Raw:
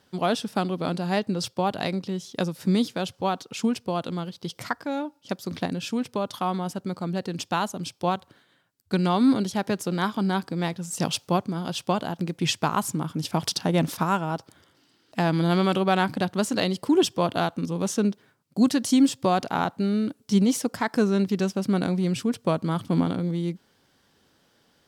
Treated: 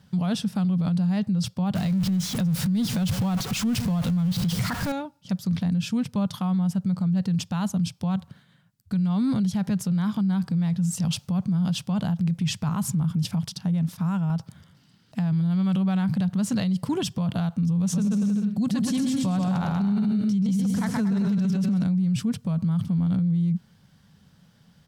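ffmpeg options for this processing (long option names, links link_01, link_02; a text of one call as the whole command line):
ffmpeg -i in.wav -filter_complex "[0:a]asettb=1/sr,asplit=3[link_01][link_02][link_03];[link_01]atrim=end=1.754[link_04];[link_02]atrim=start=1.75:end=4.92,asetpts=PTS-STARTPTS,afade=type=in:duration=0.004:curve=qsin,afade=type=out:start_time=3.166:duration=0.004:curve=qsin,aeval=exprs='val(0)+0.5*0.0422*sgn(val(0))':channel_layout=same[link_05];[link_03]atrim=start=4.916[link_06];[link_04][link_05]acrossfade=duration=0.004:curve1=hsin:curve2=qsin[link_07];[link_07][link_06]acrossfade=duration=0.004:curve1=qsin:curve2=hsin,asplit=3[link_08][link_09][link_10];[link_08]afade=type=out:start_time=17.92:duration=0.02[link_11];[link_09]aecho=1:1:130|234|317.2|383.8|437|479.6:0.631|0.398|0.251|0.158|0.1|0.0631,afade=type=in:start_time=17.92:duration=0.02,afade=type=out:start_time=21.83:duration=0.02[link_12];[link_10]afade=type=in:start_time=21.83:duration=0.02[link_13];[link_11][link_12][link_13]amix=inputs=3:normalize=0,asplit=3[link_14][link_15][link_16];[link_14]atrim=end=13.362[link_17];[link_15]atrim=start=13.358:end=14.302,asetpts=PTS-STARTPTS,volume=-9.5dB[link_18];[link_16]atrim=start=14.298[link_19];[link_17][link_18]acrossfade=duration=0.004:curve1=hsin:curve2=hsin[link_20];[link_20][link_19]acrossfade=duration=0.004:curve1=hsin:curve2=hsin,lowshelf=frequency=240:width_type=q:width=3:gain=10.5,alimiter=limit=-18.5dB:level=0:latency=1:release=33" out.wav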